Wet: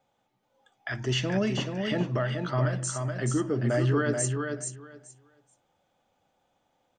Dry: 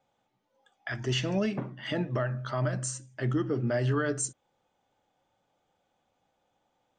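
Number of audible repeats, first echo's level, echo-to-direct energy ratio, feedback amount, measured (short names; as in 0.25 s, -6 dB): 2, -5.0 dB, -5.0 dB, 17%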